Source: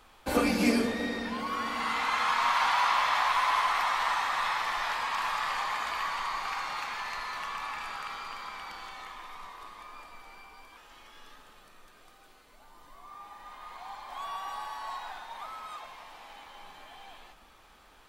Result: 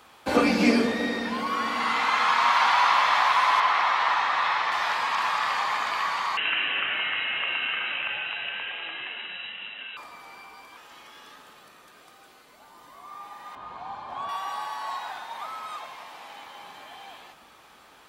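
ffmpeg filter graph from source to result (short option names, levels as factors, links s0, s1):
-filter_complex "[0:a]asettb=1/sr,asplit=3[s0][s1][s2];[s0]atrim=end=3.604[s3];[s1]atrim=start=3.6:end=4.72,asetpts=PTS-STARTPTS,afade=t=in:d=0.004:c=qsin,afade=t=out:st=1.116:d=0.004:c=qsin,lowpass=4500,equalizer=f=200:t=o:w=0.39:g=-5[s4];[s2]atrim=start=4.716[s5];[s3][s4]acrossfade=d=0.004:c1=hsin:c2=qsin[s6];[s6][s5]acrossfade=d=0.004:c1=qsin:c2=hsin,asettb=1/sr,asplit=3[s7][s8][s9];[s7]atrim=end=6.374[s10];[s8]atrim=start=6.37:end=9.97,asetpts=PTS-STARTPTS,afade=t=in:d=0.004:c=qsin,afade=t=out:st=3.596:d=0.004:c=qsin,tiltshelf=f=720:g=-6,lowpass=f=3300:t=q:w=0.5098,lowpass=f=3300:t=q:w=0.6013,lowpass=f=3300:t=q:w=0.9,lowpass=f=3300:t=q:w=2.563,afreqshift=-3900[s11];[s9]atrim=start=9.966[s12];[s10][s11]acrossfade=d=0.004:c1=hsin:c2=qsin[s13];[s13][s12]acrossfade=d=0.004:c1=qsin:c2=hsin,asettb=1/sr,asplit=3[s14][s15][s16];[s14]atrim=end=13.554[s17];[s15]atrim=start=13.55:end=14.29,asetpts=PTS-STARTPTS,afade=t=in:d=0.004:c=qsin,afade=t=out:st=0.736:d=0.004:c=qsin,highpass=67,aemphasis=mode=reproduction:type=riaa,bandreject=f=2000:w=6.5[s18];[s16]atrim=start=14.286[s19];[s17][s18]acrossfade=d=0.004:c1=hsin:c2=qsin[s20];[s20][s19]acrossfade=d=0.004:c1=qsin:c2=hsin,highpass=95,acrossover=split=6500[s21][s22];[s22]acompressor=threshold=0.00126:ratio=4:attack=1:release=60[s23];[s21][s23]amix=inputs=2:normalize=0,lowshelf=f=140:g=-3,volume=1.88"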